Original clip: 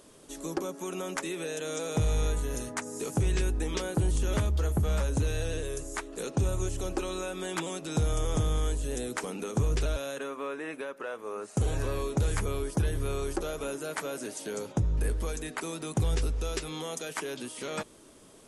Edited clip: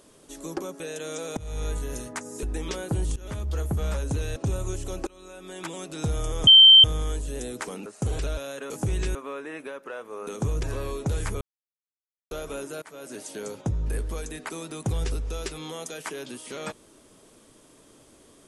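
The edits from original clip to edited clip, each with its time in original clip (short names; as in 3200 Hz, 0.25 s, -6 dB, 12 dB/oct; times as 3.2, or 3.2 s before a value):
0.8–1.41 cut
1.98–2.33 fade in, from -21 dB
3.04–3.49 move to 10.29
4.22–4.63 fade in, from -19 dB
5.42–6.29 cut
7–7.82 fade in, from -24 dB
8.4 add tone 3120 Hz -8 dBFS 0.37 s
9.42–9.78 swap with 11.41–11.74
12.52–13.42 mute
13.93–14.31 fade in, from -21.5 dB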